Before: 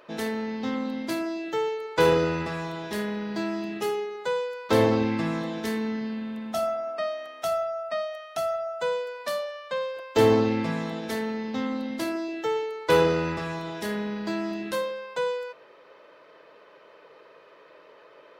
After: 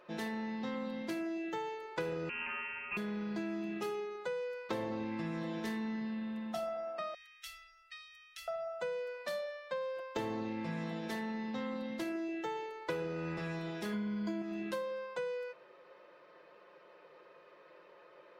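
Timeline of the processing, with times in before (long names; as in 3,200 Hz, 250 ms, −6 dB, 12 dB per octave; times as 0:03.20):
0:02.29–0:02.97: voice inversion scrambler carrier 2,900 Hz
0:07.14–0:08.48: inverse Chebyshev band-stop filter 120–990 Hz
0:13.92–0:14.42: EQ curve with evenly spaced ripples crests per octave 1.8, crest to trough 14 dB
whole clip: high-shelf EQ 5,200 Hz −6 dB; comb filter 5.6 ms, depth 52%; downward compressor 10 to 1, threshold −27 dBFS; level −7 dB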